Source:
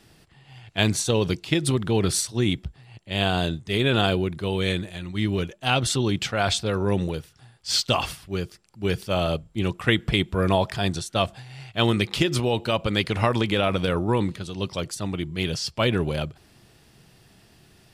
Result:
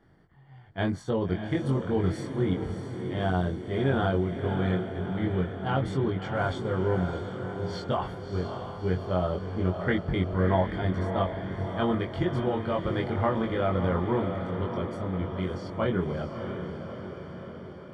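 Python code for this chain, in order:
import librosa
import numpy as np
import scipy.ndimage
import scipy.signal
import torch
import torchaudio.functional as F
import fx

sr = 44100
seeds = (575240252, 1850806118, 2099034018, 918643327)

y = scipy.signal.savgol_filter(x, 41, 4, mode='constant')
y = fx.doubler(y, sr, ms=22.0, db=-2.5)
y = fx.echo_diffused(y, sr, ms=633, feedback_pct=62, wet_db=-7.0)
y = y * 10.0 ** (-6.0 / 20.0)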